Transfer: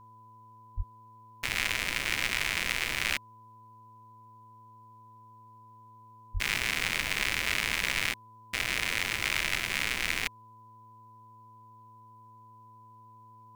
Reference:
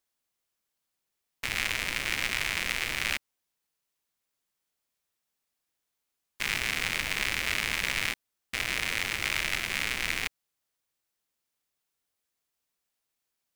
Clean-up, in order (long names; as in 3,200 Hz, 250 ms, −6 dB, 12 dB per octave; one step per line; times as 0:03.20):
hum removal 112.5 Hz, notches 5
notch filter 1,000 Hz, Q 30
0:00.76–0:00.88: high-pass filter 140 Hz 24 dB per octave
0:06.33–0:06.45: high-pass filter 140 Hz 24 dB per octave